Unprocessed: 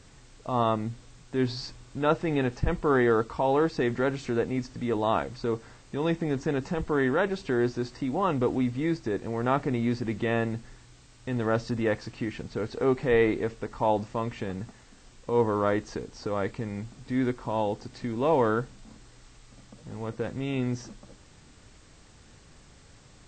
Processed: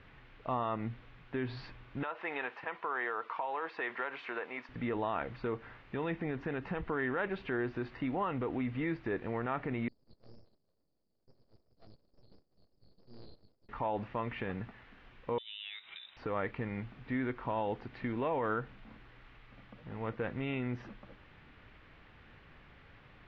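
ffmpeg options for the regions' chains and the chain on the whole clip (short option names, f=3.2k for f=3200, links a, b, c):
-filter_complex "[0:a]asettb=1/sr,asplit=3[a][b][c];[a]atrim=end=2.034[d];[b]atrim=start=2.03:end=4.69,asetpts=PTS-STARTPTS,afade=t=in:d=0.004:c=qsin,afade=t=out:st=2.656:d=0.004:c=qsin,highpass=630,equalizer=f=1k:w=5.3:g=5.5,acompressor=threshold=-30dB:ratio=10:attack=3.2:release=140:knee=1:detection=peak[e];[c]atrim=start=4.686[f];[d][e]acrossfade=d=0.004:c1=hsin:c2=qsin[g];[g][f]acrossfade=d=0.004:c1=qsin:c2=hsin,asettb=1/sr,asplit=3[h][i][j];[h]atrim=end=9.884[k];[i]atrim=start=9.88:end=13.69,asetpts=PTS-STARTPTS,afade=t=in:d=0.004:c=qsin,afade=t=out:st=3.806:d=0.004:c=qsin,asuperpass=centerf=2400:order=20:qfactor=3.3,flanger=delay=2.1:depth=9.2:regen=-12:speed=1.8:shape=triangular,aeval=exprs='abs(val(0))':c=same[l];[j]atrim=start=13.686[m];[k][l]acrossfade=d=0.004:c1=hsin:c2=qsin[n];[n][m]acrossfade=d=0.004:c1=qsin:c2=hsin,asettb=1/sr,asplit=3[o][p][q];[o]atrim=end=15.384[r];[p]atrim=start=15.38:end=16.17,asetpts=PTS-STARTPTS,afade=t=in:d=0.004:c=qsin,afade=t=out:st=0.786:d=0.004:c=qsin,highpass=f=200:p=1,acompressor=threshold=-37dB:ratio=8:attack=3.2:release=140:knee=1:detection=peak,lowpass=f=3.4k:t=q:w=0.5098,lowpass=f=3.4k:t=q:w=0.6013,lowpass=f=3.4k:t=q:w=0.9,lowpass=f=3.4k:t=q:w=2.563,afreqshift=-4000[s];[q]atrim=start=16.166[t];[r][s]acrossfade=d=0.004:c1=hsin:c2=qsin[u];[u][t]acrossfade=d=0.004:c1=qsin:c2=hsin,alimiter=limit=-22dB:level=0:latency=1:release=115,lowpass=f=3k:w=0.5412,lowpass=f=3k:w=1.3066,equalizer=f=2k:t=o:w=2.3:g=7.5,volume=-5dB"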